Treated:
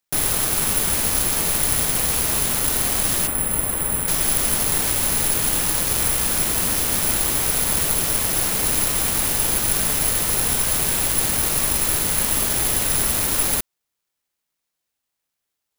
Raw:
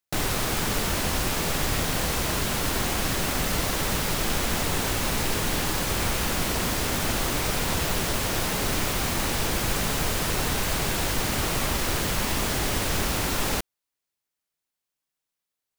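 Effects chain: 3.27–4.08 s: distance through air 280 m; careless resampling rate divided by 4×, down none, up zero stuff; trim -1 dB

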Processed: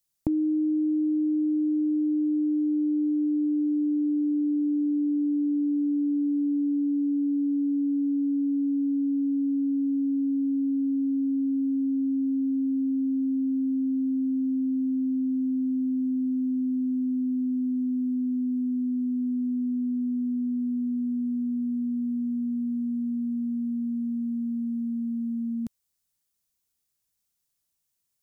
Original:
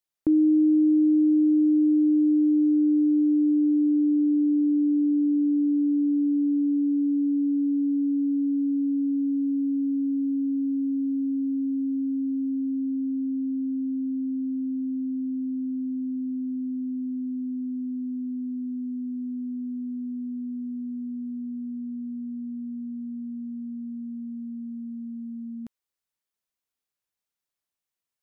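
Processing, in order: tone controls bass +11 dB, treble +11 dB; compression 6:1, threshold -24 dBFS, peak gain reduction 9 dB

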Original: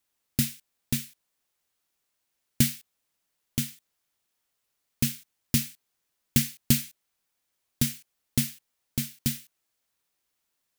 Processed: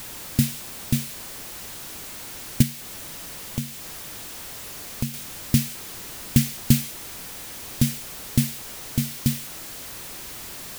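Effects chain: jump at every zero crossing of -30.5 dBFS; bass shelf 420 Hz +8 dB; 2.62–5.14 s: compression 2:1, threshold -27 dBFS, peak gain reduction 8 dB; trim -1 dB

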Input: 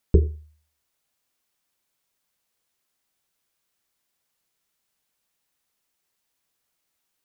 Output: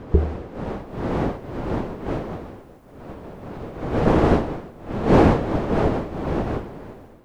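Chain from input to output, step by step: wind noise 480 Hz -30 dBFS; level rider gain up to 8 dB

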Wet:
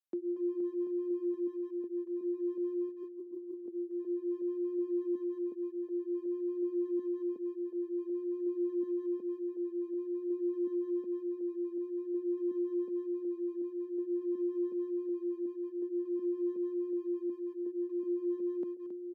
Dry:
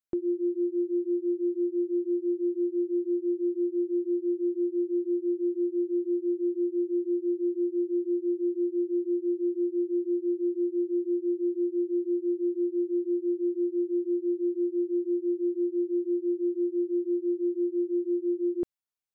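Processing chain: backward echo that repeats 368 ms, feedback 66%, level -9 dB; steep high-pass 190 Hz; tone controls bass +3 dB, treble +2 dB; 2.89–3.66 s: compressor with a negative ratio -37 dBFS, ratio -1; speakerphone echo 230 ms, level -15 dB; trim -8 dB

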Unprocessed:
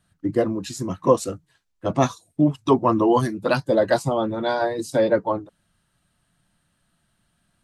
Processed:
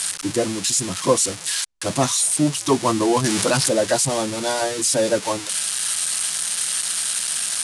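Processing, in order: zero-crossing glitches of -11 dBFS; elliptic low-pass 10 kHz, stop band 60 dB; 3.24–3.69 s: level flattener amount 70%

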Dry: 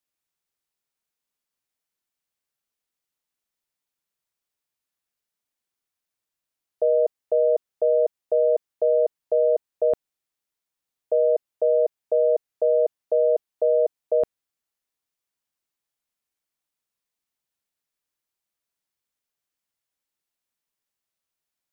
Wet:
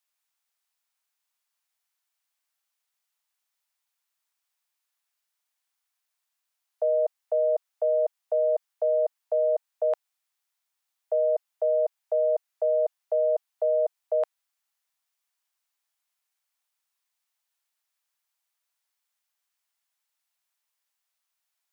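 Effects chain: high-pass 700 Hz 24 dB/octave; trim +4 dB

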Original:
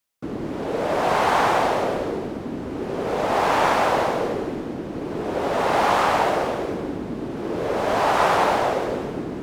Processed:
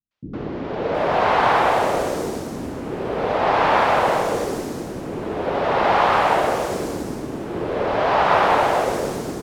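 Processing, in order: three bands offset in time lows, mids, highs 110/720 ms, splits 270/5000 Hz; trim +2.5 dB

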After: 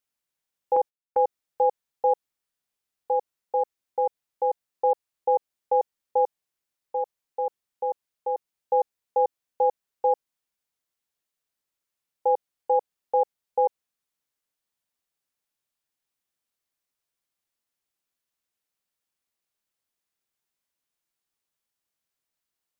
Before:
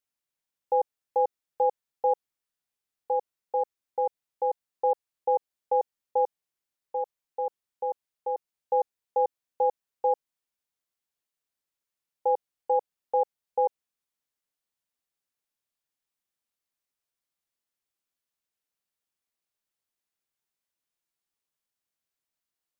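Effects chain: 0.76–1.22 s: gate -32 dBFS, range -17 dB; trim +2.5 dB

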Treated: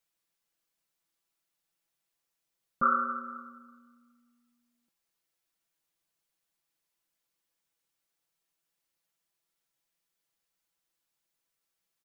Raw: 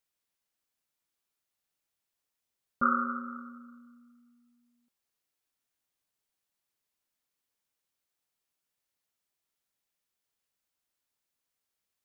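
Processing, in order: comb 6 ms, depth 67%

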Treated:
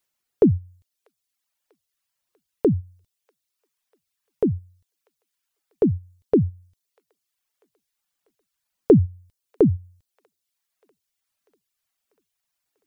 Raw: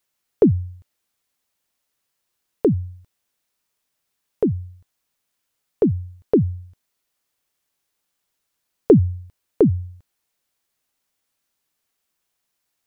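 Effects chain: feedback echo behind a high-pass 643 ms, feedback 65%, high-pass 1.6 kHz, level -21 dB; reverb removal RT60 0.94 s; trim -1.5 dB

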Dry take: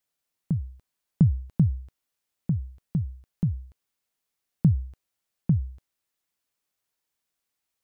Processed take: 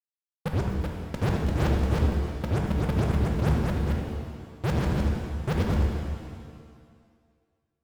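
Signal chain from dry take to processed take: time reversed locally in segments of 76 ms; fuzz box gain 43 dB, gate -49 dBFS; peak limiter -16.5 dBFS, peak gain reduction 5.5 dB; ever faster or slower copies 408 ms, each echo +1 st, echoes 2; gate with hold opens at -19 dBFS; formant shift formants +4 st; pitch-shifted reverb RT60 1.8 s, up +7 st, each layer -8 dB, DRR 1.5 dB; trim -7 dB

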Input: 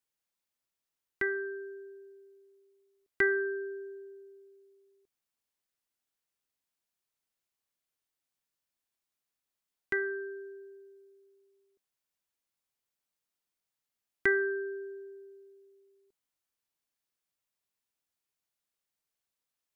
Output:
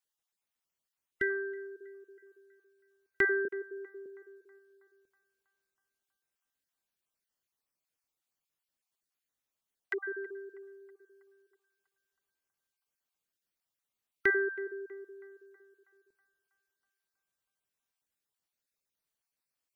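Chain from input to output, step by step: random holes in the spectrogram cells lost 26%; 3.45–4.06 s: steep high-pass 160 Hz; band-passed feedback delay 322 ms, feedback 68%, band-pass 950 Hz, level -20.5 dB

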